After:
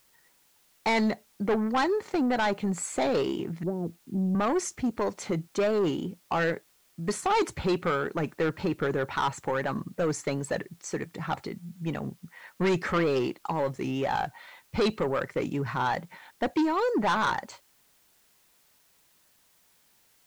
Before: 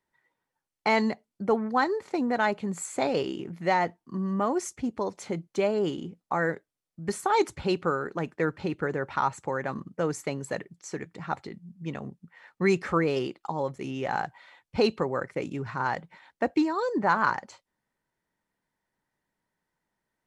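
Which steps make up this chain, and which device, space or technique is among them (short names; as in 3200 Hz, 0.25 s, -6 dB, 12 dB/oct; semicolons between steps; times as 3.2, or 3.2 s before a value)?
3.63–4.35 inverse Chebyshev low-pass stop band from 2300 Hz, stop band 80 dB; compact cassette (soft clip -25 dBFS, distortion -9 dB; LPF 9000 Hz; wow and flutter; white noise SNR 35 dB); gain +4.5 dB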